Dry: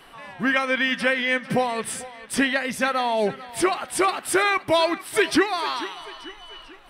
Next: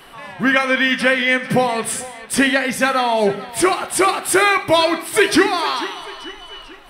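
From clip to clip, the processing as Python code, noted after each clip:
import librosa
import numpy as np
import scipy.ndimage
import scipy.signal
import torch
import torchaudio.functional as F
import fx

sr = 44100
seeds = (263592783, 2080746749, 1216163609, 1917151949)

y = fx.high_shelf(x, sr, hz=11000.0, db=5.0)
y = fx.rev_gated(y, sr, seeds[0], gate_ms=240, shape='falling', drr_db=10.0)
y = F.gain(torch.from_numpy(y), 5.5).numpy()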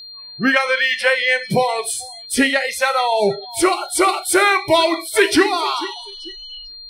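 y = fx.noise_reduce_blind(x, sr, reduce_db=29)
y = y + 10.0 ** (-34.0 / 20.0) * np.sin(2.0 * np.pi * 4200.0 * np.arange(len(y)) / sr)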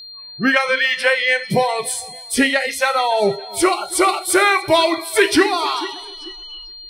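y = fx.echo_feedback(x, sr, ms=284, feedback_pct=48, wet_db=-23)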